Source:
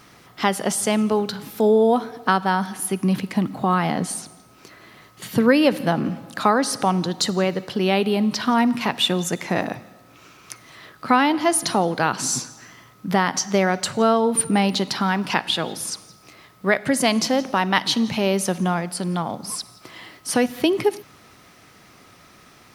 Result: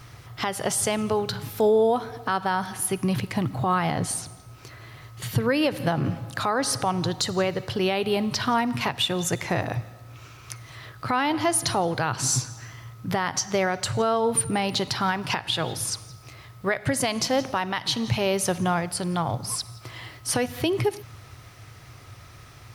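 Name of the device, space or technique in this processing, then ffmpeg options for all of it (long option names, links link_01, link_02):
car stereo with a boomy subwoofer: -af "lowshelf=frequency=150:width_type=q:width=3:gain=9.5,alimiter=limit=-13dB:level=0:latency=1:release=186"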